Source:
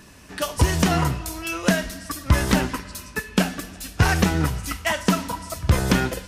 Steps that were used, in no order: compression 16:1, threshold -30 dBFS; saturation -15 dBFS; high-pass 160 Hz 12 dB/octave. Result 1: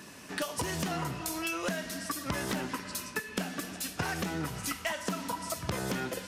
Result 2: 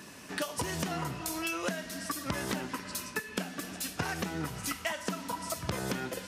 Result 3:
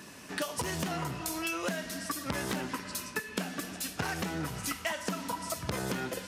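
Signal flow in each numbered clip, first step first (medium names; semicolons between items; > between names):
high-pass > saturation > compression; high-pass > compression > saturation; saturation > high-pass > compression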